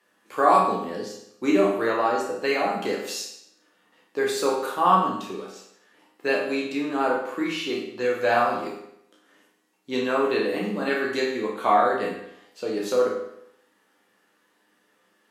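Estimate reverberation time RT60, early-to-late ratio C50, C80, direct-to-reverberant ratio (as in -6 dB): 0.75 s, 3.0 dB, 6.5 dB, -3.5 dB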